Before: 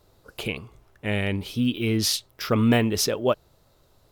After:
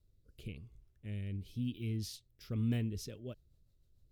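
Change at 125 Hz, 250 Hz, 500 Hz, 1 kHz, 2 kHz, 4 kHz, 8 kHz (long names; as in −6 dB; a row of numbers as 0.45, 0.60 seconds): −9.5 dB, −15.5 dB, −24.0 dB, below −30 dB, −24.5 dB, −23.0 dB, −23.0 dB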